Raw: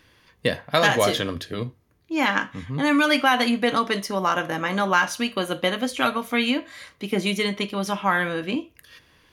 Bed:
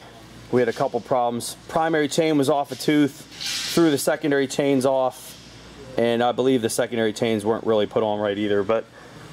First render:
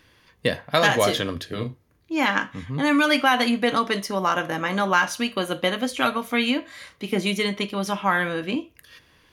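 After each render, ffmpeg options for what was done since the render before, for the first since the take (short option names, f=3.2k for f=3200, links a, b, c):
-filter_complex "[0:a]asettb=1/sr,asplit=3[a][b][c];[a]atrim=end=1.484[d];[b]atrim=start=1.48:end=2.13,asetpts=PTS-STARTPTS,afade=t=in:d=0.004:c=qsin,afade=t=out:st=0.646:d=0.004:c=qsin,asplit=2[e][f];[f]adelay=38,volume=-6.5dB[g];[e][g]amix=inputs=2:normalize=0,atrim=end_sample=28665[h];[c]atrim=start=2.126[i];[d][h]acrossfade=d=0.004:c1=hsin:c2=qsin[j];[j][i]acrossfade=d=0.004:c1=qsin:c2=hsin,asettb=1/sr,asplit=3[k][l][m];[k]atrim=end=6.784[n];[l]atrim=start=6.78:end=7.18,asetpts=PTS-STARTPTS,afade=t=in:d=0.004:c=qsin,afade=t=out:st=0.396:d=0.004:c=qsin,asplit=2[o][p];[p]adelay=33,volume=-10dB[q];[o][q]amix=inputs=2:normalize=0,atrim=end_sample=17640[r];[m]atrim=start=7.176[s];[n][r]acrossfade=d=0.004:c1=hsin:c2=qsin[t];[t][s]acrossfade=d=0.004:c1=qsin:c2=hsin"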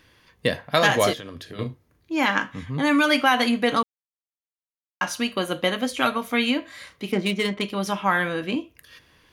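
-filter_complex "[0:a]asettb=1/sr,asplit=3[a][b][c];[a]atrim=end=1.134[d];[b]atrim=start=1.13:end=1.59,asetpts=PTS-STARTPTS,afade=t=in:d=0.004:c=qsin,afade=t=out:st=0.456:d=0.004:c=qsin,acompressor=threshold=-35dB:ratio=4:attack=3.2:release=140:knee=1:detection=peak[e];[c]atrim=start=1.586[f];[d][e]acrossfade=d=0.004:c1=hsin:c2=qsin[g];[g][f]acrossfade=d=0.004:c1=qsin:c2=hsin,asettb=1/sr,asplit=3[h][i][j];[h]atrim=end=7.124[k];[i]atrim=start=7.12:end=7.62,asetpts=PTS-STARTPTS,afade=t=in:d=0.004:c=qsin,afade=t=out:st=0.496:d=0.004:c=qsin,adynamicsmooth=sensitivity=3:basefreq=2.1k[l];[j]atrim=start=7.616[m];[k][l]acrossfade=d=0.004:c1=hsin:c2=qsin[n];[n][m]acrossfade=d=0.004:c1=qsin:c2=hsin,asplit=3[o][p][q];[o]atrim=end=3.83,asetpts=PTS-STARTPTS,afade=t=out:st=3.826:d=0.004:c=hsin[r];[p]atrim=start=3.83:end=5.01,asetpts=PTS-STARTPTS,volume=0[s];[q]atrim=start=5.01,asetpts=PTS-STARTPTS,afade=t=in:d=0.004:c=hsin[t];[r][s][t]concat=n=3:v=0:a=1"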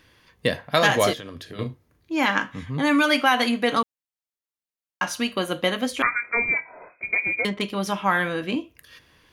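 -filter_complex "[0:a]asettb=1/sr,asplit=3[a][b][c];[a]atrim=end=3.024[d];[b]atrim=start=3.02:end=3.77,asetpts=PTS-STARTPTS,afade=t=in:d=0.004:c=qsin,afade=t=out:st=0.746:d=0.004:c=qsin,highpass=f=160:p=1[e];[c]atrim=start=3.766[f];[d][e]acrossfade=d=0.004:c1=hsin:c2=qsin[g];[g][f]acrossfade=d=0.004:c1=qsin:c2=hsin,asettb=1/sr,asplit=3[h][i][j];[h]atrim=end=6.024[k];[i]atrim=start=6.02:end=7.45,asetpts=PTS-STARTPTS,afade=t=in:d=0.004:c=qsin,afade=t=out:st=1.426:d=0.004:c=qsin,lowpass=f=2.2k:t=q:w=0.5098,lowpass=f=2.2k:t=q:w=0.6013,lowpass=f=2.2k:t=q:w=0.9,lowpass=f=2.2k:t=q:w=2.563,afreqshift=-2600[l];[j]atrim=start=7.446[m];[k][l]acrossfade=d=0.004:c1=hsin:c2=qsin[n];[n][m]acrossfade=d=0.004:c1=qsin:c2=hsin"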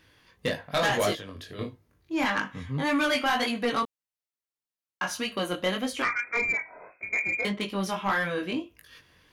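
-af "flanger=delay=18.5:depth=4.4:speed=1.7,asoftclip=type=tanh:threshold=-18.5dB"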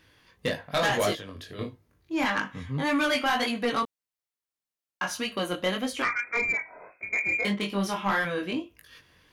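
-filter_complex "[0:a]asettb=1/sr,asplit=3[a][b][c];[a]atrim=end=7.224[d];[b]atrim=start=7.22:end=8.25,asetpts=PTS-STARTPTS,afade=t=in:d=0.004:c=qsin,afade=t=out:st=1.026:d=0.004:c=qsin,asplit=2[e][f];[f]adelay=25,volume=-6dB[g];[e][g]amix=inputs=2:normalize=0,atrim=end_sample=45423[h];[c]atrim=start=8.246[i];[d][h]acrossfade=d=0.004:c1=hsin:c2=qsin[j];[j][i]acrossfade=d=0.004:c1=qsin:c2=hsin"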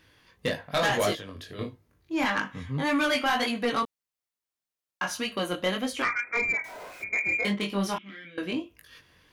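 -filter_complex "[0:a]asettb=1/sr,asplit=3[a][b][c];[a]atrim=end=6.644[d];[b]atrim=start=6.64:end=7.04,asetpts=PTS-STARTPTS,afade=t=in:d=0.004:c=qsin,afade=t=out:st=0.396:d=0.004:c=qsin,aeval=exprs='val(0)+0.5*0.00841*sgn(val(0))':c=same[e];[c]atrim=start=7.036[f];[d][e]acrossfade=d=0.004:c1=hsin:c2=qsin[g];[g][f]acrossfade=d=0.004:c1=qsin:c2=hsin,asettb=1/sr,asplit=3[h][i][j];[h]atrim=end=7.984[k];[i]atrim=start=7.98:end=8.38,asetpts=PTS-STARTPTS,afade=t=in:d=0.004:c=qsin,afade=t=out:st=0.396:d=0.004:c=qsin,asplit=3[l][m][n];[l]bandpass=f=270:t=q:w=8,volume=0dB[o];[m]bandpass=f=2.29k:t=q:w=8,volume=-6dB[p];[n]bandpass=f=3.01k:t=q:w=8,volume=-9dB[q];[o][p][q]amix=inputs=3:normalize=0[r];[j]atrim=start=8.376[s];[k][r]acrossfade=d=0.004:c1=hsin:c2=qsin[t];[t][s]acrossfade=d=0.004:c1=qsin:c2=hsin"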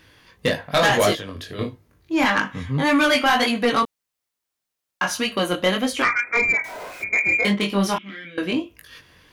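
-af "volume=7.5dB"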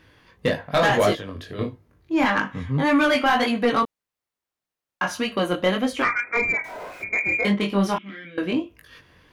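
-af "highshelf=f=2.8k:g=-9"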